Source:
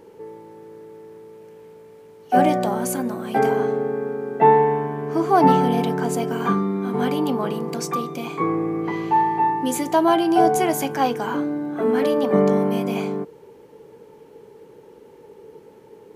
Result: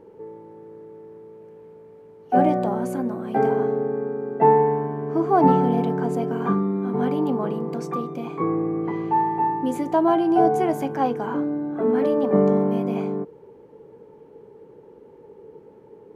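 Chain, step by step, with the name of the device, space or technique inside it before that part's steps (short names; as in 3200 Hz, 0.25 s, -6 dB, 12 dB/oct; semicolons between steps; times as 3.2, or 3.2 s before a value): through cloth (high shelf 2100 Hz -17 dB); 9.25–9.69 notch 7200 Hz, Q 5.3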